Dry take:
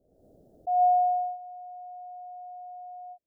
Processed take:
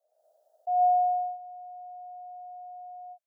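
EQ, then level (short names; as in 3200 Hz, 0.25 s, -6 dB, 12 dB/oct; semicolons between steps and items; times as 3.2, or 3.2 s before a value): Chebyshev high-pass 610 Hz, order 5; 0.0 dB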